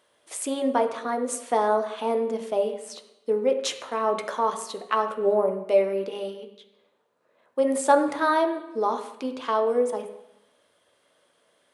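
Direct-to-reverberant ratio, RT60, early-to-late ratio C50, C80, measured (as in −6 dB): 5.0 dB, 0.85 s, 9.5 dB, 11.5 dB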